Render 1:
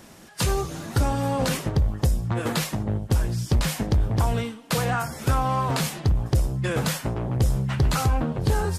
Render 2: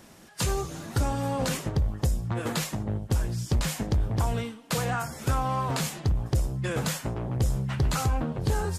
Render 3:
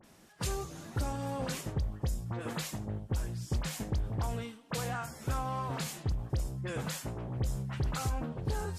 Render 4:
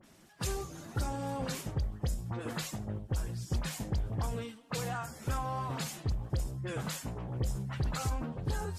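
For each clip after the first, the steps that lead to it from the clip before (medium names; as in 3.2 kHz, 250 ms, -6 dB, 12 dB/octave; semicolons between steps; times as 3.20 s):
dynamic bell 7.1 kHz, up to +4 dB, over -48 dBFS, Q 3.2; trim -4 dB
phase dispersion highs, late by 41 ms, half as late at 2.5 kHz; trim -7.5 dB
coarse spectral quantiser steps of 15 dB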